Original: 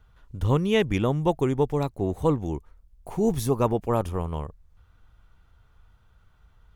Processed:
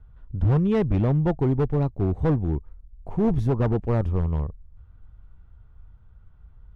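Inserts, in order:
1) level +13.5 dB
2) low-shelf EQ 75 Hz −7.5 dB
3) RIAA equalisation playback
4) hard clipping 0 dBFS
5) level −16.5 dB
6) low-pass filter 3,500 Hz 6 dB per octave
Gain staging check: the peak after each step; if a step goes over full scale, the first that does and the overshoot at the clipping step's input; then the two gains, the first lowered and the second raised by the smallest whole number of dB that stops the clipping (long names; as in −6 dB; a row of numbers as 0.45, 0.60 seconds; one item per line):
+5.0, +4.5, +8.0, 0.0, −16.5, −16.5 dBFS
step 1, 8.0 dB
step 1 +5.5 dB, step 5 −8.5 dB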